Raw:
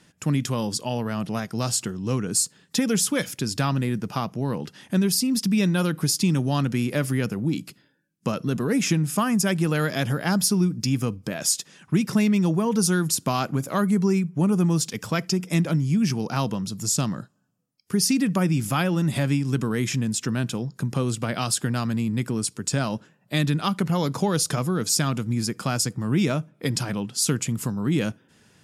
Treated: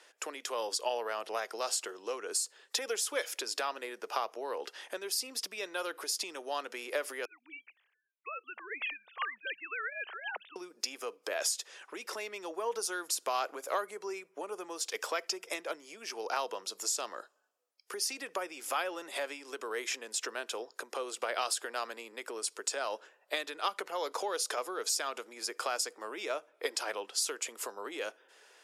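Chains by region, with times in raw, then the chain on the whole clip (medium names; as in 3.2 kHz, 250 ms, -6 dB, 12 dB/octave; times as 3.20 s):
7.25–10.56 s: formants replaced by sine waves + band-pass filter 2.7 kHz, Q 1.6 + distance through air 120 m
whole clip: compression, threshold -27 dBFS; steep high-pass 420 Hz 36 dB/octave; treble shelf 5.4 kHz -5.5 dB; trim +1.5 dB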